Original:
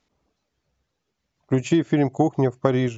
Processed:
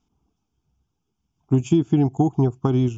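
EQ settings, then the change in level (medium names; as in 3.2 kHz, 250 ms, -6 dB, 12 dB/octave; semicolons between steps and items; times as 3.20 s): high-order bell 1.7 kHz -9 dB; treble shelf 3.6 kHz -9.5 dB; static phaser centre 2.8 kHz, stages 8; +5.0 dB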